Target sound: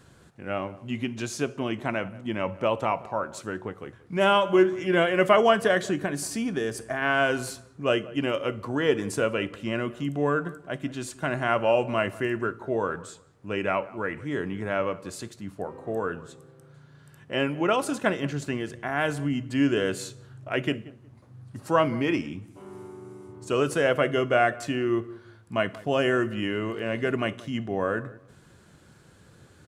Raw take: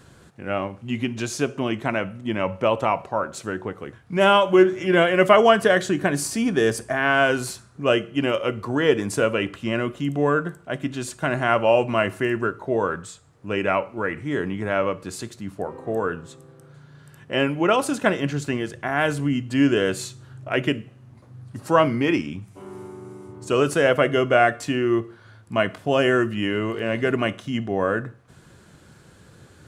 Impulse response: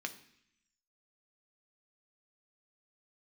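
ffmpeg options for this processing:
-filter_complex "[0:a]asettb=1/sr,asplit=3[a][b][c];[a]atrim=end=5.984[d];[b]atrim=start=5.98:end=7.02,asetpts=PTS-STARTPTS,afade=t=in:d=0.004:c=qsin,afade=t=out:st=1.036:d=0.004:c=qsin,acompressor=threshold=-20dB:ratio=6[e];[c]atrim=start=7.016[f];[d][e]acrossfade=d=0.004:c1=hsin:c2=qsin[g];[g][f]acrossfade=d=0.004:c1=qsin:c2=hsin,asplit=2[h][i];[i]adelay=181,lowpass=f=1.4k:p=1,volume=-18.5dB,asplit=2[j][k];[k]adelay=181,lowpass=f=1.4k:p=1,volume=0.26[l];[j][l]amix=inputs=2:normalize=0[m];[h][m]amix=inputs=2:normalize=0,volume=-4.5dB"

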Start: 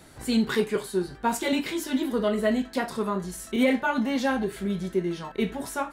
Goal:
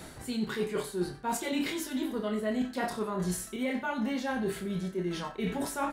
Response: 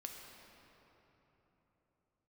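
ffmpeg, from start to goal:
-filter_complex "[0:a]areverse,acompressor=threshold=-35dB:ratio=12,areverse,asplit=2[a][b];[b]adelay=28,volume=-7dB[c];[a][c]amix=inputs=2:normalize=0,aecho=1:1:91:0.158,volume=5.5dB"

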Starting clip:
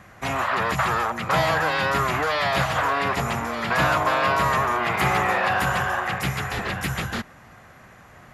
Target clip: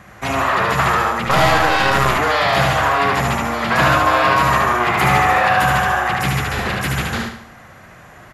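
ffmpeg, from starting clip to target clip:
-filter_complex "[0:a]aecho=1:1:74|148|222|296|370:0.708|0.29|0.119|0.0488|0.02,asettb=1/sr,asplit=3[a][b][c];[a]atrim=end=1.254[d];[b]atrim=start=1.25:end=2.18,asetpts=PTS-STARTPTS,afade=t=in:d=0.004:c=qsin,afade=t=out:st=0.926:d=0.004:c=qsin,aeval=exprs='0.447*(cos(1*acos(clip(val(0)/0.447,-1,1)))-cos(1*PI/2))+0.0501*(cos(6*acos(clip(val(0)/0.447,-1,1)))-cos(6*PI/2))':c=same[e];[c]atrim=start=2.176[f];[d][e]acrossfade=d=0.004:c1=hsin:c2=qsin[g];[g][f]acrossfade=d=0.004:c1=qsin:c2=hsin,volume=4.5dB"

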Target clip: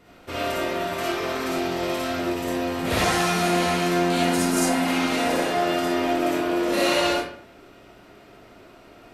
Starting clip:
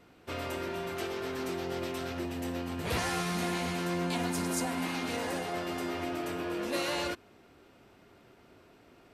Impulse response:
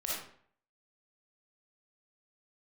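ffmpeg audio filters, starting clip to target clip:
-filter_complex "[1:a]atrim=start_sample=2205[a];[0:a][a]afir=irnorm=-1:irlink=0,volume=7dB"

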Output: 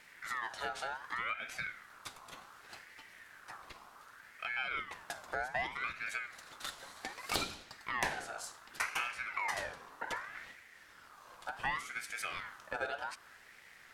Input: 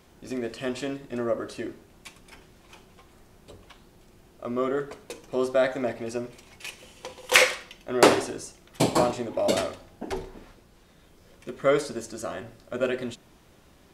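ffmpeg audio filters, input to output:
-af "acompressor=threshold=-36dB:ratio=3,aeval=exprs='val(0)*sin(2*PI*1500*n/s+1500*0.3/0.66*sin(2*PI*0.66*n/s))':c=same,volume=1dB"

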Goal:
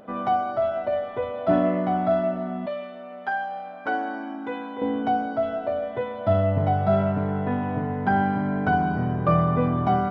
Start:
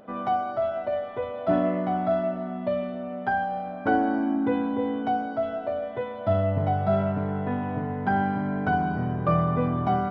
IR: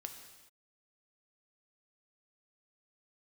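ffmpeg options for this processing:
-filter_complex "[0:a]asettb=1/sr,asplit=3[a][b][c];[a]atrim=end=2.664[d];[b]atrim=start=2.66:end=4.82,asetpts=PTS-STARTPTS,afade=t=in:d=0.004:c=qsin,afade=t=out:st=2.156:d=0.004:c=qsin,highpass=f=1.1k:p=1[e];[c]atrim=start=4.816[f];[d][e]acrossfade=d=0.004:c1=hsin:c2=qsin[g];[g][f]acrossfade=d=0.004:c1=qsin:c2=hsin,volume=2.5dB"

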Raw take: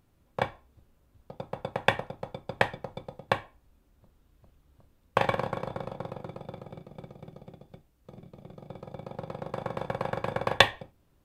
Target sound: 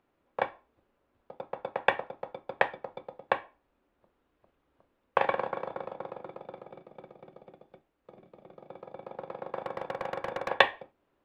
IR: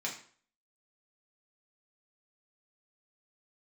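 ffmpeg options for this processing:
-filter_complex "[0:a]acrossover=split=270 3100:gain=0.112 1 0.126[a][b][c];[a][b][c]amix=inputs=3:normalize=0,asettb=1/sr,asplit=3[d][e][f];[d]atrim=end=9.634[g];[e]atrim=start=9.63:end=10.5,asetpts=PTS-STARTPTS,afade=t=in:d=0.004:c=qsin,afade=t=out:st=0.866:d=0.004:c=qsin,asoftclip=type=hard:threshold=-26dB[h];[f]atrim=start=10.496[i];[g][h]acrossfade=d=0.004:c1=hsin:c2=qsin[j];[j][i]acrossfade=d=0.004:c1=qsin:c2=hsin"

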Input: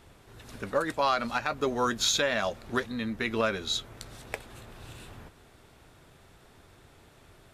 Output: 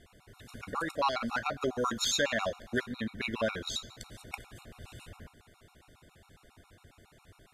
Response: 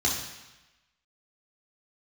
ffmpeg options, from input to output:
-filter_complex "[0:a]bandreject=f=900:w=26,asplit=2[a][b];[1:a]atrim=start_sample=2205,lowshelf=f=370:g=-4[c];[b][c]afir=irnorm=-1:irlink=0,volume=-24dB[d];[a][d]amix=inputs=2:normalize=0,afftfilt=real='re*gt(sin(2*PI*7.3*pts/sr)*(1-2*mod(floor(b*sr/1024/730),2)),0)':imag='im*gt(sin(2*PI*7.3*pts/sr)*(1-2*mod(floor(b*sr/1024/730),2)),0)':win_size=1024:overlap=0.75"

